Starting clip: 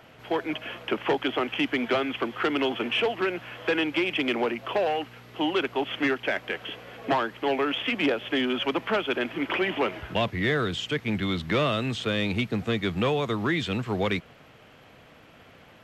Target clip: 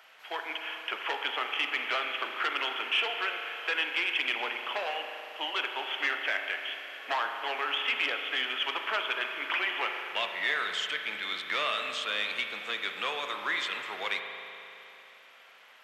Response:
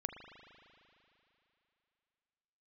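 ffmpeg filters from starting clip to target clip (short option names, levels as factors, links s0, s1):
-filter_complex "[0:a]highpass=1100[s0];[1:a]atrim=start_sample=2205[s1];[s0][s1]afir=irnorm=-1:irlink=0,volume=1.19"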